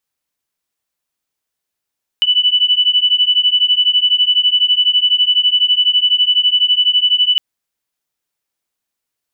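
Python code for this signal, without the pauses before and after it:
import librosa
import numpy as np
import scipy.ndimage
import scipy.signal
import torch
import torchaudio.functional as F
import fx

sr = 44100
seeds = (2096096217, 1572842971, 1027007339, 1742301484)

y = fx.two_tone_beats(sr, length_s=5.16, hz=2970.0, beat_hz=12.0, level_db=-13.0)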